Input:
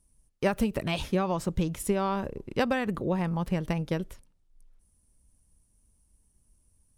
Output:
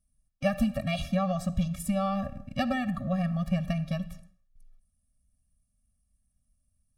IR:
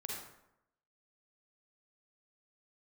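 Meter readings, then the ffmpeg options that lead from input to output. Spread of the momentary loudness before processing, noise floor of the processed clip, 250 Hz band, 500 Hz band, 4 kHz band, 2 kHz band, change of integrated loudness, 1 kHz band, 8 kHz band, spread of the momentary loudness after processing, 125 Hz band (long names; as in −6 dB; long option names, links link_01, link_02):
5 LU, −76 dBFS, +0.5 dB, −3.5 dB, −1.5 dB, −2.5 dB, −0.5 dB, −1.5 dB, −3.0 dB, 5 LU, +1.5 dB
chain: -filter_complex "[0:a]agate=range=-8dB:threshold=-57dB:ratio=16:detection=peak,asplit=2[link_01][link_02];[1:a]atrim=start_sample=2205,afade=type=out:start_time=0.38:duration=0.01,atrim=end_sample=17199,lowpass=8800[link_03];[link_02][link_03]afir=irnorm=-1:irlink=0,volume=-11dB[link_04];[link_01][link_04]amix=inputs=2:normalize=0,afftfilt=real='re*eq(mod(floor(b*sr/1024/270),2),0)':imag='im*eq(mod(floor(b*sr/1024/270),2),0)':win_size=1024:overlap=0.75"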